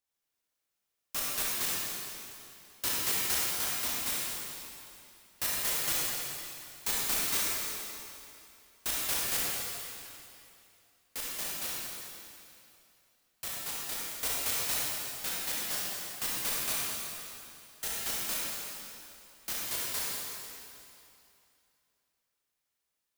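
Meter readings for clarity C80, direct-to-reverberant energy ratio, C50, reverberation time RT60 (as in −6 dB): −2.0 dB, −6.5 dB, −4.0 dB, 2.7 s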